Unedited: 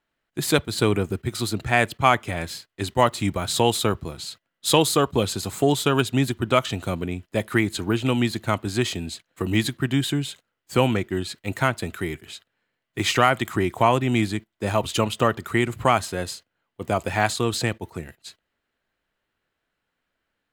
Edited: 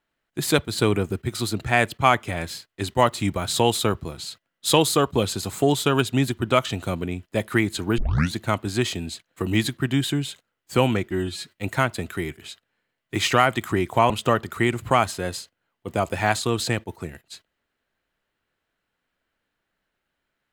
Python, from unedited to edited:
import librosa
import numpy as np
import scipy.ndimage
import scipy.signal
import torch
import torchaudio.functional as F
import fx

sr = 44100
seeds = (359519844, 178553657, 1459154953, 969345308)

y = fx.edit(x, sr, fx.tape_start(start_s=7.98, length_s=0.36),
    fx.stretch_span(start_s=11.11, length_s=0.32, factor=1.5),
    fx.cut(start_s=13.94, length_s=1.1), tone=tone)